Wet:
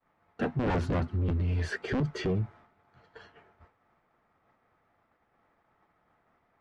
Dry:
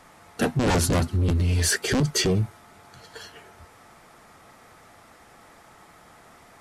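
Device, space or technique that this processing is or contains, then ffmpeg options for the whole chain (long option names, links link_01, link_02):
hearing-loss simulation: -af "lowpass=2200,agate=range=-33dB:threshold=-43dB:ratio=3:detection=peak,volume=-6.5dB"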